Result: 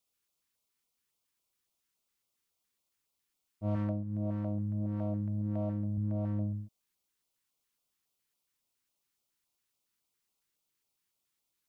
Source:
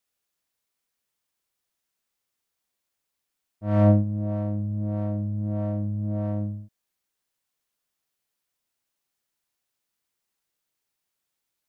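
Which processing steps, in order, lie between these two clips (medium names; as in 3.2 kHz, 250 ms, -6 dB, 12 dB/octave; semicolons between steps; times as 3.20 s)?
3.76–5.98 s: bass shelf 98 Hz -7 dB; compression 8:1, threshold -28 dBFS, peak gain reduction 13.5 dB; LFO notch square 3.6 Hz 650–1700 Hz; trim -1 dB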